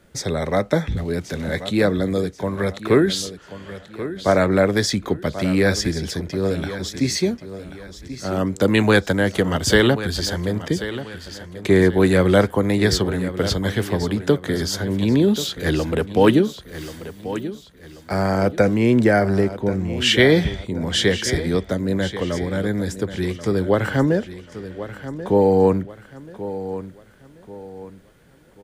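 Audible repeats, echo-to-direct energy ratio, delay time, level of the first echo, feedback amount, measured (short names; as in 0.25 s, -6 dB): 3, -12.5 dB, 1.085 s, -13.0 dB, 36%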